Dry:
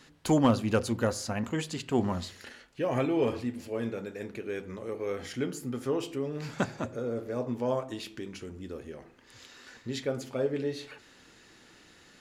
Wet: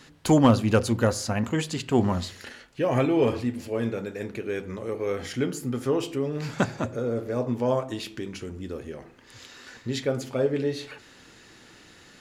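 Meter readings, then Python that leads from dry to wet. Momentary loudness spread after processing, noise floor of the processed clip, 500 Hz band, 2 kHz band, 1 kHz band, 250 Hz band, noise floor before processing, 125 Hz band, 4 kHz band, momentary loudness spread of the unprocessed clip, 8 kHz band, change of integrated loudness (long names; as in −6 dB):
15 LU, −52 dBFS, +5.0 dB, +5.0 dB, +5.0 dB, +5.5 dB, −57 dBFS, +7.0 dB, +5.0 dB, 15 LU, +5.0 dB, +5.5 dB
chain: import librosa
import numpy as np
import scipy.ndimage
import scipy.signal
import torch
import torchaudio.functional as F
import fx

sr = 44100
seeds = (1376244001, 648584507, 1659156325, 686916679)

y = fx.peak_eq(x, sr, hz=110.0, db=3.0, octaves=0.77)
y = y * librosa.db_to_amplitude(5.0)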